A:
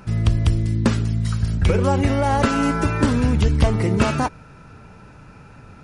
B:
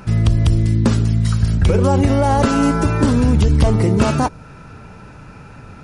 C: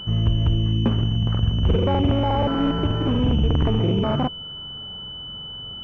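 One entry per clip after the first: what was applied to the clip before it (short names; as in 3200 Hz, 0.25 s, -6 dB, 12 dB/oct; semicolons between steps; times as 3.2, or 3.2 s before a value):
dynamic EQ 2100 Hz, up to -6 dB, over -38 dBFS, Q 0.87; maximiser +10 dB; gain -4.5 dB
crackling interface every 0.12 s, samples 2048, repeat, from 0.94; pulse-width modulation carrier 3000 Hz; gain -5.5 dB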